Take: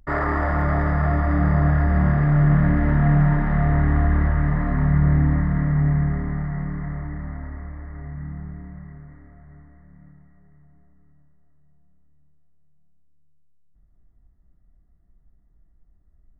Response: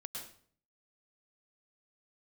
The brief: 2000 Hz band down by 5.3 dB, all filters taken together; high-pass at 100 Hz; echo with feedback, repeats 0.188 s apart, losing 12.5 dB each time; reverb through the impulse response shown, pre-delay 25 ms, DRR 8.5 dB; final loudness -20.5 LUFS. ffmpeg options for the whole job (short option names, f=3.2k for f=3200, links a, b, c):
-filter_complex "[0:a]highpass=100,equalizer=f=2k:t=o:g=-6.5,aecho=1:1:188|376|564:0.237|0.0569|0.0137,asplit=2[a][b];[1:a]atrim=start_sample=2205,adelay=25[c];[b][c]afir=irnorm=-1:irlink=0,volume=-6.5dB[d];[a][d]amix=inputs=2:normalize=0,volume=3dB"